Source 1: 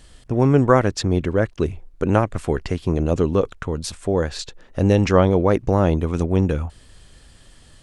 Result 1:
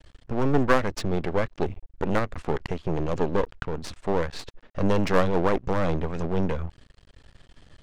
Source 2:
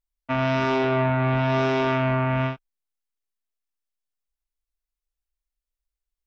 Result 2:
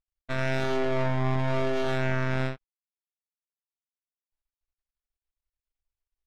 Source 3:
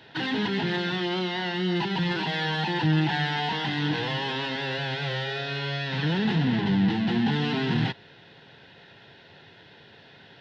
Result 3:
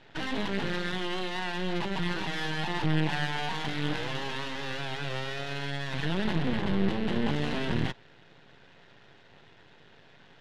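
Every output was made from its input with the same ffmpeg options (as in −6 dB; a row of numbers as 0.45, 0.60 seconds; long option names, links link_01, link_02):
-af "aeval=exprs='max(val(0),0)':channel_layout=same,adynamicsmooth=sensitivity=3:basefreq=4500"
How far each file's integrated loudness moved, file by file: −7.0, −5.5, −5.0 LU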